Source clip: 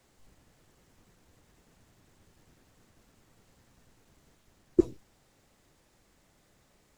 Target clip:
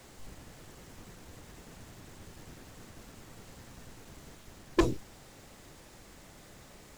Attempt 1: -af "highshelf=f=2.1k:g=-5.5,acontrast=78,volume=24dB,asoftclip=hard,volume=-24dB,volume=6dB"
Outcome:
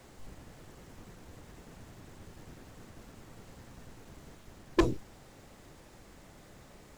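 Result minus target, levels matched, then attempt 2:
4000 Hz band -8.5 dB
-af "acontrast=78,volume=24dB,asoftclip=hard,volume=-24dB,volume=6dB"

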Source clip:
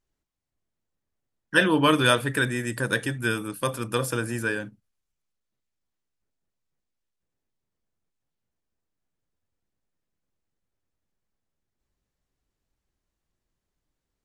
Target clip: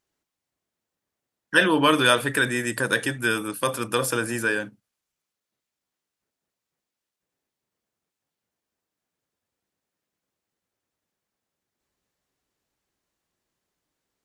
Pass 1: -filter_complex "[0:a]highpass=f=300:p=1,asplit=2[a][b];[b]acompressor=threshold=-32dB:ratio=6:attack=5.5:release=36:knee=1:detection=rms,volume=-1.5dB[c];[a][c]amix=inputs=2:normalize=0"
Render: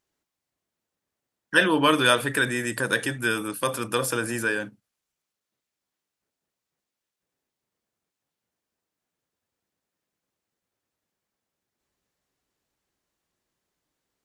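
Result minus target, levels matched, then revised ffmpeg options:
compressor: peak gain reduction +5 dB
-filter_complex "[0:a]highpass=f=300:p=1,asplit=2[a][b];[b]acompressor=threshold=-26dB:ratio=6:attack=5.5:release=36:knee=1:detection=rms,volume=-1.5dB[c];[a][c]amix=inputs=2:normalize=0"

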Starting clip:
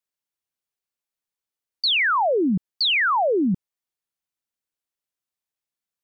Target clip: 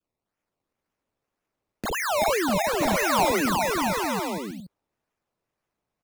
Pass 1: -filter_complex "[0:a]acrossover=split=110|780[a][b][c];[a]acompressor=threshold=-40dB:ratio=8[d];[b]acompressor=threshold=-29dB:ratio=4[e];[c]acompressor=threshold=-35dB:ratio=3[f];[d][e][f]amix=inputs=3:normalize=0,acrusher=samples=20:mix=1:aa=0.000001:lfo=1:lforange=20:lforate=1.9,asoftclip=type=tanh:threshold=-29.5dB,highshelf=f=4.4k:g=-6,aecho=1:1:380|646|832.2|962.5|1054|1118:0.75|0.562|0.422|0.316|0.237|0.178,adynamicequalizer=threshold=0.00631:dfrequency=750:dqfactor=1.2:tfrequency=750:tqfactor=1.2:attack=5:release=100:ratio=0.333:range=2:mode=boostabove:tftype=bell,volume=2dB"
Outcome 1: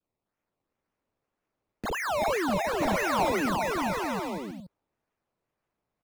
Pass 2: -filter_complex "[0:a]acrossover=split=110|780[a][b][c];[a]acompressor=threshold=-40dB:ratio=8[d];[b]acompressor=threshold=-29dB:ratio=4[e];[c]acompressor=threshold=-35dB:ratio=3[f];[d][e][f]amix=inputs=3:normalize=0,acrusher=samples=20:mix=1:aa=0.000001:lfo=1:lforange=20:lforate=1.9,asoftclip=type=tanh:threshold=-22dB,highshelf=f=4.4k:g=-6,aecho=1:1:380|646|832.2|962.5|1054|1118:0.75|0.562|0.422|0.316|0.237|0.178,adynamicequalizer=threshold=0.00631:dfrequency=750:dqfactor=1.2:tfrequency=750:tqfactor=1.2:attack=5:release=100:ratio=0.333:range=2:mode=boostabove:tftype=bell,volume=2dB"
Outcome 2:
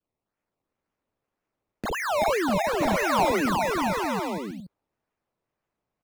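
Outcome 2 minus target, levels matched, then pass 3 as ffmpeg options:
8000 Hz band -5.5 dB
-filter_complex "[0:a]acrossover=split=110|780[a][b][c];[a]acompressor=threshold=-40dB:ratio=8[d];[b]acompressor=threshold=-29dB:ratio=4[e];[c]acompressor=threshold=-35dB:ratio=3[f];[d][e][f]amix=inputs=3:normalize=0,acrusher=samples=20:mix=1:aa=0.000001:lfo=1:lforange=20:lforate=1.9,asoftclip=type=tanh:threshold=-22dB,highshelf=f=4.4k:g=2.5,aecho=1:1:380|646|832.2|962.5|1054|1118:0.75|0.562|0.422|0.316|0.237|0.178,adynamicequalizer=threshold=0.00631:dfrequency=750:dqfactor=1.2:tfrequency=750:tqfactor=1.2:attack=5:release=100:ratio=0.333:range=2:mode=boostabove:tftype=bell,volume=2dB"

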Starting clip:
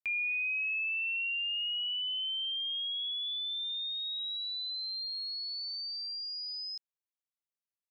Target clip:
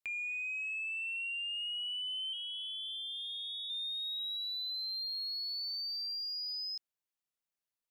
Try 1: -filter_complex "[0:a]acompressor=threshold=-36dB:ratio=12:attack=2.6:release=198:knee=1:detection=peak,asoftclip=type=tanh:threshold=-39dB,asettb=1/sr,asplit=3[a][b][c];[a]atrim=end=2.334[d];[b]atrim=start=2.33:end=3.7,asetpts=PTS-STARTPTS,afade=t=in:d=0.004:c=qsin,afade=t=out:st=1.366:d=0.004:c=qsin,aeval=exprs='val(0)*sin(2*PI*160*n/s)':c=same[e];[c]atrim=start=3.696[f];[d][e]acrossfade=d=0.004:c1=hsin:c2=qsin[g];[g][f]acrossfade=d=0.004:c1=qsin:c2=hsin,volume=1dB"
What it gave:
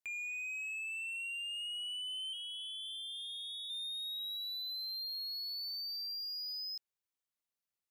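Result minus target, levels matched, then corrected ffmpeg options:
soft clip: distortion +12 dB
-filter_complex "[0:a]acompressor=threshold=-36dB:ratio=12:attack=2.6:release=198:knee=1:detection=peak,asoftclip=type=tanh:threshold=-31.5dB,asettb=1/sr,asplit=3[a][b][c];[a]atrim=end=2.334[d];[b]atrim=start=2.33:end=3.7,asetpts=PTS-STARTPTS,afade=t=in:d=0.004:c=qsin,afade=t=out:st=1.366:d=0.004:c=qsin,aeval=exprs='val(0)*sin(2*PI*160*n/s)':c=same[e];[c]atrim=start=3.696[f];[d][e]acrossfade=d=0.004:c1=hsin:c2=qsin[g];[g][f]acrossfade=d=0.004:c1=qsin:c2=hsin,volume=1dB"

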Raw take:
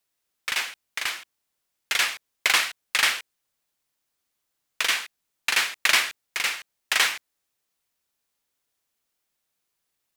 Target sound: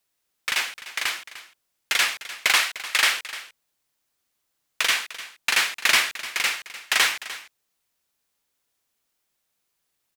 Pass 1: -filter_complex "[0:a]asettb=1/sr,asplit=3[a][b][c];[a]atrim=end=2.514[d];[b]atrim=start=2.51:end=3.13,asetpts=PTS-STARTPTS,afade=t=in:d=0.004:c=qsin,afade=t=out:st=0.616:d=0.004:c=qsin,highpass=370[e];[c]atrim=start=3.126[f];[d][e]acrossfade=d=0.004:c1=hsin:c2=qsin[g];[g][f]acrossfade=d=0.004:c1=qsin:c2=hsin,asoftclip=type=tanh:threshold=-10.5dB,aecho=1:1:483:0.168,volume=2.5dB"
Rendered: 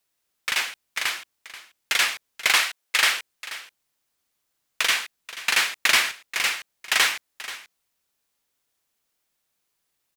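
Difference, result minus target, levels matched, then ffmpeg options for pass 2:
echo 0.183 s late
-filter_complex "[0:a]asettb=1/sr,asplit=3[a][b][c];[a]atrim=end=2.514[d];[b]atrim=start=2.51:end=3.13,asetpts=PTS-STARTPTS,afade=t=in:d=0.004:c=qsin,afade=t=out:st=0.616:d=0.004:c=qsin,highpass=370[e];[c]atrim=start=3.126[f];[d][e]acrossfade=d=0.004:c1=hsin:c2=qsin[g];[g][f]acrossfade=d=0.004:c1=qsin:c2=hsin,asoftclip=type=tanh:threshold=-10.5dB,aecho=1:1:300:0.168,volume=2.5dB"

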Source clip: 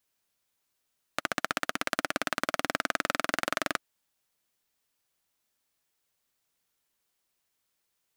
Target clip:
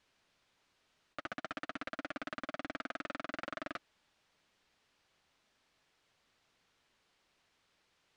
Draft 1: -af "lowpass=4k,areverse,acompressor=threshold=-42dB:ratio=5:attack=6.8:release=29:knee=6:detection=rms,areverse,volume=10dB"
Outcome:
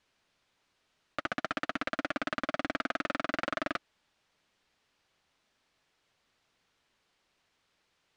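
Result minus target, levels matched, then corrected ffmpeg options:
compressor: peak gain reduction -9 dB
-af "lowpass=4k,areverse,acompressor=threshold=-53dB:ratio=5:attack=6.8:release=29:knee=6:detection=rms,areverse,volume=10dB"

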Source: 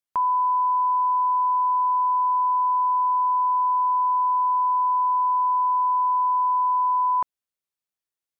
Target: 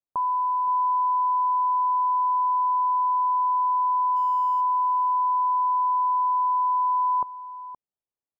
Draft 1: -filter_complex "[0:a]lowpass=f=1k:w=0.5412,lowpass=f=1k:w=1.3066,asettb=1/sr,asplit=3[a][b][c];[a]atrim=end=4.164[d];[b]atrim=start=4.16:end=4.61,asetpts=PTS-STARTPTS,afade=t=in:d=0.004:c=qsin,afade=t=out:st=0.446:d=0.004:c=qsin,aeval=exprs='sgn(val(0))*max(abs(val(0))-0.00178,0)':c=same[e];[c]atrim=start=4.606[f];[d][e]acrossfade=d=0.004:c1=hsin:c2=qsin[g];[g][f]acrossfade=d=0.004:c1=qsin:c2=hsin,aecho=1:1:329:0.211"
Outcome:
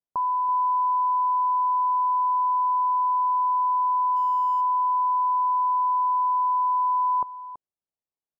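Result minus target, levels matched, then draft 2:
echo 0.191 s early
-filter_complex "[0:a]lowpass=f=1k:w=0.5412,lowpass=f=1k:w=1.3066,asettb=1/sr,asplit=3[a][b][c];[a]atrim=end=4.164[d];[b]atrim=start=4.16:end=4.61,asetpts=PTS-STARTPTS,afade=t=in:d=0.004:c=qsin,afade=t=out:st=0.446:d=0.004:c=qsin,aeval=exprs='sgn(val(0))*max(abs(val(0))-0.00178,0)':c=same[e];[c]atrim=start=4.606[f];[d][e]acrossfade=d=0.004:c1=hsin:c2=qsin[g];[g][f]acrossfade=d=0.004:c1=qsin:c2=hsin,aecho=1:1:520:0.211"

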